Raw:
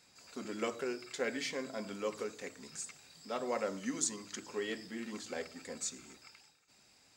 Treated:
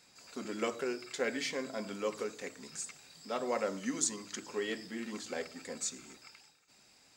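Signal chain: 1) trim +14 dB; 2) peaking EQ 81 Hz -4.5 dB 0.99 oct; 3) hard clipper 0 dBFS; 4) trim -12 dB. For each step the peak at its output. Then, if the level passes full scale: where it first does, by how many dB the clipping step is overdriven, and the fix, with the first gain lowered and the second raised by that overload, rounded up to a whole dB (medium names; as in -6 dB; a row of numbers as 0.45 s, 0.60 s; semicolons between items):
-5.0 dBFS, -5.0 dBFS, -5.0 dBFS, -17.0 dBFS; nothing clips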